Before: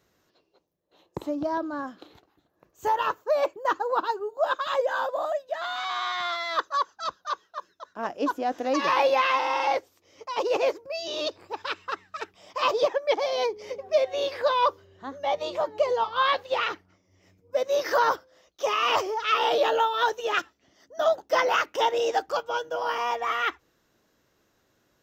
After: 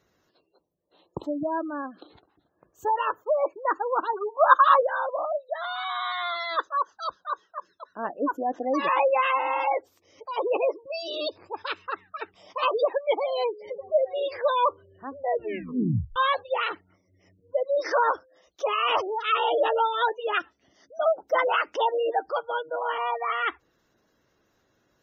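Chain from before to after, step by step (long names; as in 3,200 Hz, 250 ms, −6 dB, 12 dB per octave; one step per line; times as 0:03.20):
gate on every frequency bin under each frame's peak −20 dB strong
0:04.13–0:04.83: parametric band 1,200 Hz +15 dB 1 octave
0:15.17: tape stop 0.99 s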